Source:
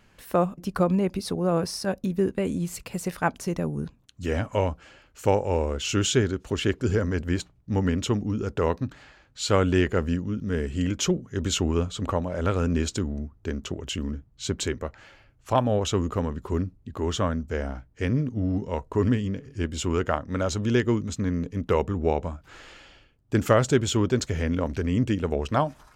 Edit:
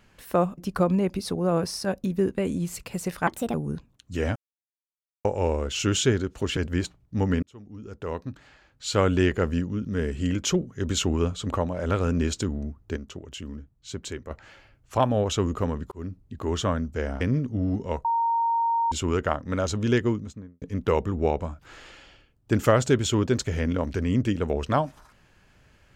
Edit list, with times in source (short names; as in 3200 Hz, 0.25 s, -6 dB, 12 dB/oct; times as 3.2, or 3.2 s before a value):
3.27–3.63 speed 135%
4.45–5.34 mute
6.66–7.12 cut
7.98–9.65 fade in
13.52–14.86 gain -7 dB
16.47–16.78 fade in
17.76–18.03 cut
18.87–19.74 bleep 925 Hz -20.5 dBFS
20.77–21.44 studio fade out